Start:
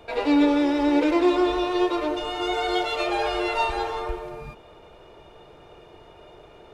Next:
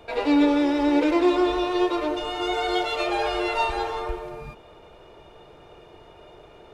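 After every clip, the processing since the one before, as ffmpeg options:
-af anull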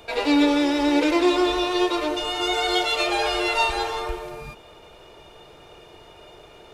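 -af "highshelf=f=2.6k:g=11"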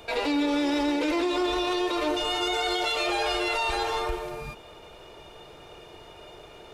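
-af "alimiter=limit=-18.5dB:level=0:latency=1:release=26"

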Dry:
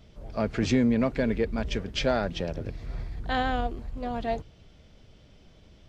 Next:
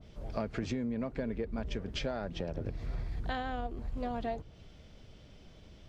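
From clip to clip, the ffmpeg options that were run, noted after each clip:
-af "acompressor=threshold=-31dB:ratio=12,adynamicequalizer=threshold=0.00224:dfrequency=1700:dqfactor=0.7:tfrequency=1700:tqfactor=0.7:attack=5:release=100:ratio=0.375:range=3.5:mode=cutabove:tftype=highshelf"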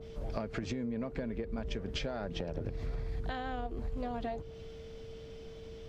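-af "acompressor=threshold=-37dB:ratio=6,aeval=exprs='val(0)+0.00282*sin(2*PI*450*n/s)':c=same,volume=4dB"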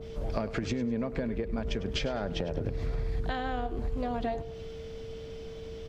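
-af "aecho=1:1:102|204|306:0.158|0.0507|0.0162,volume=5dB"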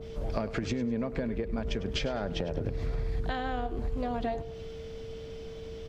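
-af anull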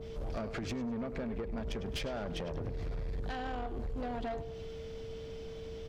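-af "asoftclip=type=tanh:threshold=-31dB,volume=-1.5dB"

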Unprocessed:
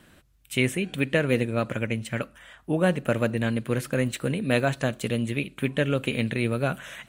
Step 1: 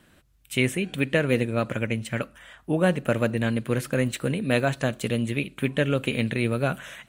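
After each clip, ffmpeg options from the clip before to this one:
-af "dynaudnorm=f=100:g=5:m=4dB,volume=-3dB"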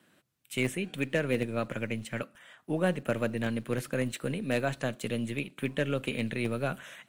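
-filter_complex "[0:a]acrossover=split=120|980[a][b][c];[a]acrusher=bits=6:dc=4:mix=0:aa=0.000001[d];[c]asoftclip=type=hard:threshold=-19.5dB[e];[d][b][e]amix=inputs=3:normalize=0,volume=-6dB"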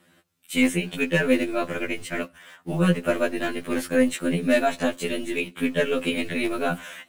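-filter_complex "[0:a]asplit=2[a][b];[b]acrusher=bits=7:mix=0:aa=0.000001,volume=-10.5dB[c];[a][c]amix=inputs=2:normalize=0,afftfilt=real='re*2*eq(mod(b,4),0)':imag='im*2*eq(mod(b,4),0)':win_size=2048:overlap=0.75,volume=8dB"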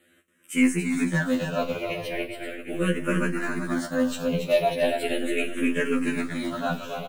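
-filter_complex "[0:a]asplit=2[a][b];[b]aecho=0:1:43|280|318|388|756|847:0.188|0.501|0.133|0.316|0.188|0.112[c];[a][c]amix=inputs=2:normalize=0,asplit=2[d][e];[e]afreqshift=-0.38[f];[d][f]amix=inputs=2:normalize=1"

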